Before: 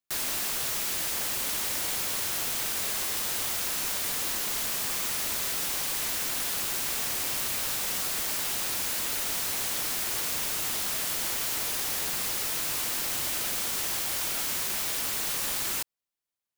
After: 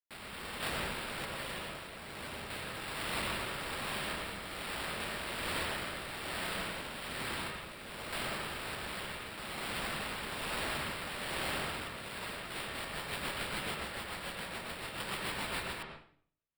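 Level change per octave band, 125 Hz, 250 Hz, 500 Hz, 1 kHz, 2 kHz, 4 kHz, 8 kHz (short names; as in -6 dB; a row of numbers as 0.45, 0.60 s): +1.0, 0.0, -0.5, -1.5, -2.0, -7.5, -18.0 dB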